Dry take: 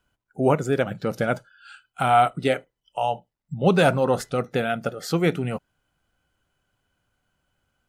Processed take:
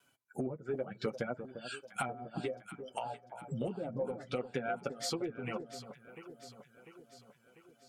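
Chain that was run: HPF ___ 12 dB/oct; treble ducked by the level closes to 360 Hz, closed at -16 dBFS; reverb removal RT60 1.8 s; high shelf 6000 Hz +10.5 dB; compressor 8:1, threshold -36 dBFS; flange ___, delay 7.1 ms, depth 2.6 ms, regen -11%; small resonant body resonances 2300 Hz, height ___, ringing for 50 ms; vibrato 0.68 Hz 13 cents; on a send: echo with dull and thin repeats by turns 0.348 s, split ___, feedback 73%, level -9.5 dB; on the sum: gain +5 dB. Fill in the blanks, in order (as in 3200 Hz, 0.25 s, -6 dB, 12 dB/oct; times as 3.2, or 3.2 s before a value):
170 Hz, 0.63 Hz, 13 dB, 1100 Hz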